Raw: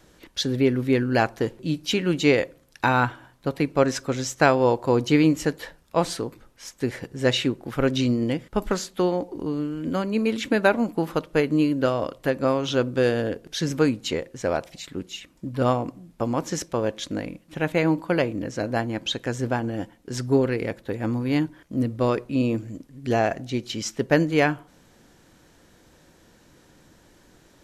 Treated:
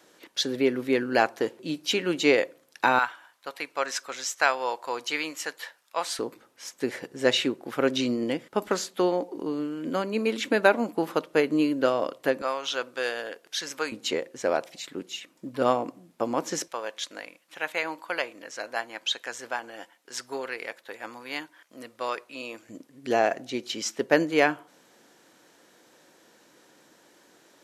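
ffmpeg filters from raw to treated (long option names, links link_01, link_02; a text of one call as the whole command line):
ffmpeg -i in.wav -af "asetnsamples=nb_out_samples=441:pad=0,asendcmd='2.99 highpass f 970;6.19 highpass f 290;12.42 highpass f 840;13.92 highpass f 300;16.68 highpass f 900;22.69 highpass f 330',highpass=330" out.wav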